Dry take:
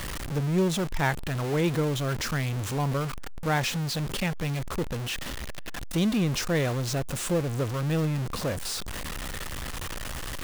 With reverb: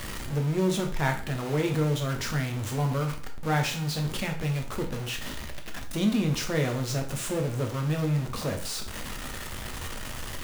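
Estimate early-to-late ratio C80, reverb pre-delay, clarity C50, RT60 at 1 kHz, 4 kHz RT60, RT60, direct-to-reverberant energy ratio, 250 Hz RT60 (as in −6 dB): 14.0 dB, 5 ms, 9.5 dB, 0.45 s, 0.40 s, 0.45 s, 2.5 dB, 0.45 s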